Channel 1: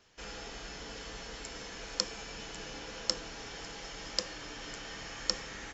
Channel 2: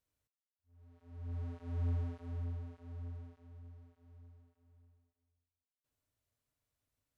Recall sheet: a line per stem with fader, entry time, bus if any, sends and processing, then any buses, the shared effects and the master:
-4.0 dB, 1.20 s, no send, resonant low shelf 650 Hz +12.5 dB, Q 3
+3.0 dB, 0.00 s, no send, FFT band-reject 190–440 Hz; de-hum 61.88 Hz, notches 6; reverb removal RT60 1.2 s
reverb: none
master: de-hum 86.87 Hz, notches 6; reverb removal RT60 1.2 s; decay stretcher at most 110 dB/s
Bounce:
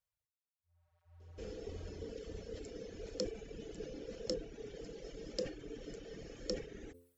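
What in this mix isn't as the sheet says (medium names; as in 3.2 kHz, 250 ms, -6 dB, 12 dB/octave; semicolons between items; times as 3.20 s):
stem 1 -4.0 dB -> -12.0 dB; stem 2 +3.0 dB -> -4.5 dB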